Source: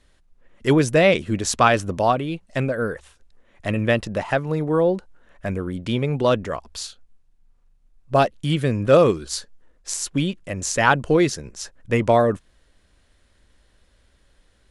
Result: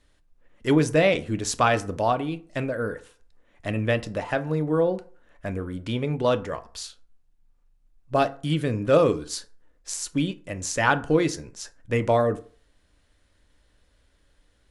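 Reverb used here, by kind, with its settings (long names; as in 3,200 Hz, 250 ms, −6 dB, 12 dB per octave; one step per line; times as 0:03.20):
feedback delay network reverb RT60 0.43 s, low-frequency decay 0.9×, high-frequency decay 0.55×, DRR 9.5 dB
level −4.5 dB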